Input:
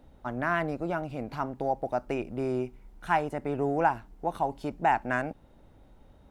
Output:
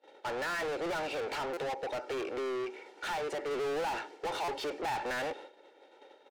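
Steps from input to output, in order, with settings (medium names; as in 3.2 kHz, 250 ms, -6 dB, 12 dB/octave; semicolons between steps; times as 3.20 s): low-pass 6 kHz 12 dB/octave; expander -45 dBFS; high-pass 330 Hz 24 dB/octave; peaking EQ 1.1 kHz -10.5 dB 0.59 oct; comb 2.2 ms, depth 53%; 1.37–3.51 s: compression 3:1, threshold -36 dBFS, peak gain reduction 10 dB; peak limiter -22.5 dBFS, peak gain reduction 7.5 dB; overdrive pedal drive 35 dB, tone 4.6 kHz, clips at -22.5 dBFS; buffer glitch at 1.53/4.44 s, samples 256, times 6; trim -6 dB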